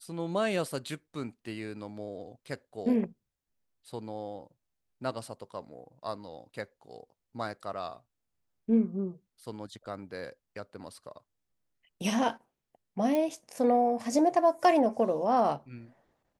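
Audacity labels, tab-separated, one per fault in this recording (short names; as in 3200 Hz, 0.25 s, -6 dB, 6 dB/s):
13.150000	13.150000	pop -18 dBFS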